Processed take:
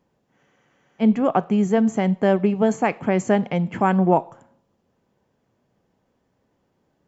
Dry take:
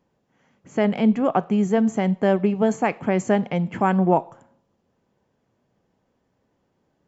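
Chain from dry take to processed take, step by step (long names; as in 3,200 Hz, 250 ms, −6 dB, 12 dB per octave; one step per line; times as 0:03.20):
frozen spectrum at 0:00.40, 0.61 s
level +1 dB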